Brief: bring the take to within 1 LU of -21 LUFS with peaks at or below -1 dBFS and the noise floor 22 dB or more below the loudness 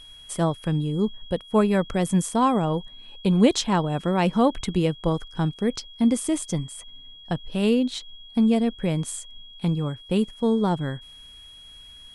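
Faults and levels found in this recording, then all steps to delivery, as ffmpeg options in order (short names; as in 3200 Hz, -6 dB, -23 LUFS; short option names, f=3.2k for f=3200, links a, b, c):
steady tone 3300 Hz; tone level -44 dBFS; loudness -24.0 LUFS; peak -5.0 dBFS; loudness target -21.0 LUFS
-> -af "bandreject=f=3.3k:w=30"
-af "volume=3dB"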